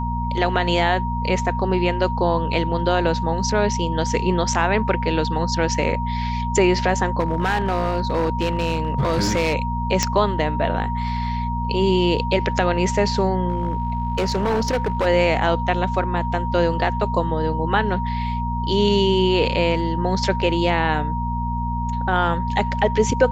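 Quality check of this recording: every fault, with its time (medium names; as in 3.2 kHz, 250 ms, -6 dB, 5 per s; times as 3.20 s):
hum 60 Hz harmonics 4 -25 dBFS
whine 940 Hz -26 dBFS
7.19–9.55 s: clipped -15.5 dBFS
10.03 s: pop -4 dBFS
13.48–15.07 s: clipped -16.5 dBFS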